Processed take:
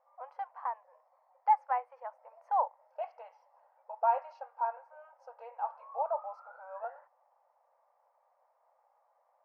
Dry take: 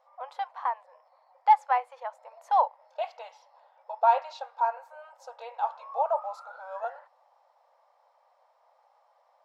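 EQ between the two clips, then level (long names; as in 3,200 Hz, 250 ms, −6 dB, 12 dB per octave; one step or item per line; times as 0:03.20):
moving average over 12 samples
−5.5 dB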